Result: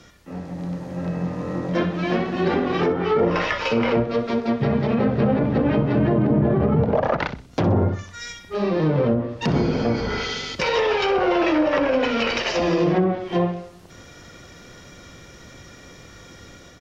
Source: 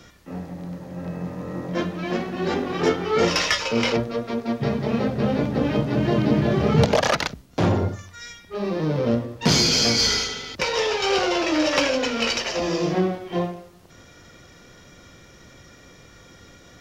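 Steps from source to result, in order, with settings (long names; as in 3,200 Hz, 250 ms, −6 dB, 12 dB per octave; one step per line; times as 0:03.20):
treble cut that deepens with the level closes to 1,000 Hz, closed at −15.5 dBFS
brickwall limiter −15 dBFS, peak gain reduction 10 dB
automatic gain control gain up to 5 dB
repeating echo 63 ms, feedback 30%, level −14 dB
level −1 dB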